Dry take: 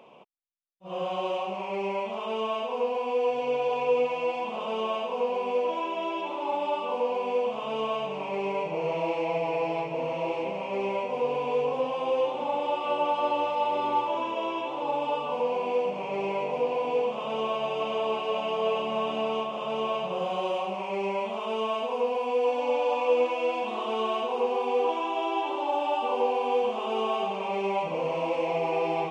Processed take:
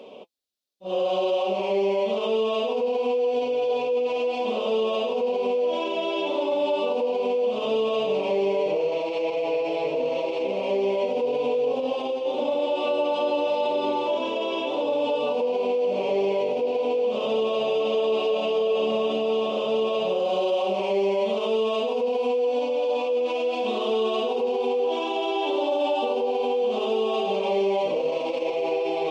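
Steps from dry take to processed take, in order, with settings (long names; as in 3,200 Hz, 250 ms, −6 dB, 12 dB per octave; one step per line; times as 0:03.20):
octave-band graphic EQ 125/250/500/1,000/2,000/4,000 Hz −6/+5/+9/−6/−5/+11 dB
brickwall limiter −22 dBFS, peak gain reduction 15 dB
notch comb filter 170 Hz
level +6 dB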